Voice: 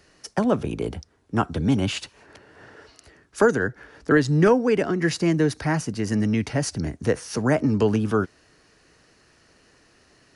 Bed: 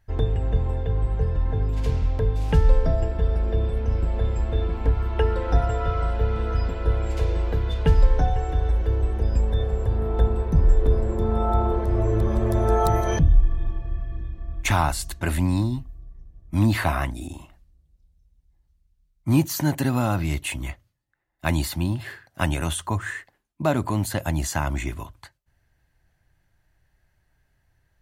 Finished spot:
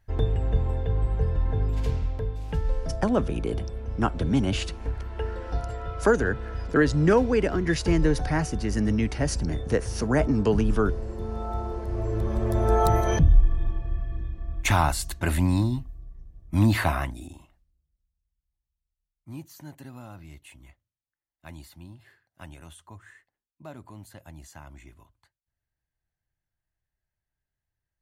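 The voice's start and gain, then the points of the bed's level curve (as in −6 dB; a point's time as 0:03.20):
2.65 s, −2.5 dB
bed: 0:01.78 −1.5 dB
0:02.41 −9.5 dB
0:11.69 −9.5 dB
0:12.81 −0.5 dB
0:16.82 −0.5 dB
0:18.21 −20.5 dB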